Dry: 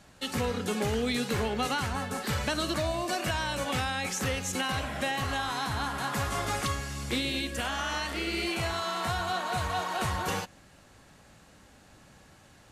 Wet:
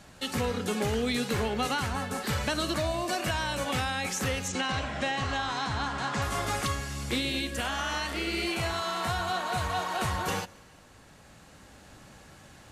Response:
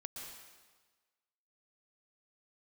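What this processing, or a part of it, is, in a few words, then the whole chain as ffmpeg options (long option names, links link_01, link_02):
ducked reverb: -filter_complex "[0:a]asplit=3[link_01][link_02][link_03];[1:a]atrim=start_sample=2205[link_04];[link_02][link_04]afir=irnorm=-1:irlink=0[link_05];[link_03]apad=whole_len=560679[link_06];[link_05][link_06]sidechaincompress=threshold=-46dB:ratio=10:attack=16:release=1050,volume=0.5dB[link_07];[link_01][link_07]amix=inputs=2:normalize=0,asettb=1/sr,asplit=3[link_08][link_09][link_10];[link_08]atrim=end=4.484[link_11];[link_09]atrim=start=4.48:end=6.22,asetpts=PTS-STARTPTS,afade=type=in:duration=0.004:curve=qsin,afade=type=out:start_time=1.736:duration=0.004:curve=qsin,lowpass=frequency=7400:width=0.5412,lowpass=frequency=7400:width=1.3066[link_12];[link_10]atrim=start=6.216[link_13];[link_11][link_12]acrossfade=duration=0.004:curve1=hsin:curve2=qsin[link_14];[link_14][link_13]acrossfade=duration=0.004:curve1=qsin:curve2=hsin"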